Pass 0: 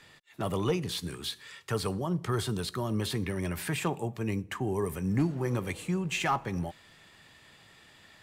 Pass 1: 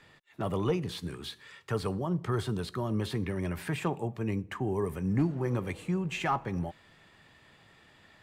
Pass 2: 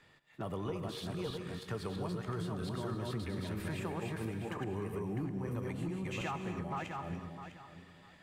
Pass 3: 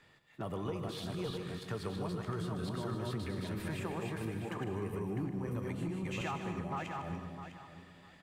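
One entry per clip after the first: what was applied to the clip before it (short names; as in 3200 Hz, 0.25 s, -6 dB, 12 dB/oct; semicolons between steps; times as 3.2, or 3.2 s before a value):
high shelf 3300 Hz -10 dB
regenerating reverse delay 0.327 s, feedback 44%, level -1.5 dB; compressor, threshold -29 dBFS, peak gain reduction 9 dB; non-linear reverb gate 0.31 s rising, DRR 9.5 dB; gain -5.5 dB
echo 0.152 s -11 dB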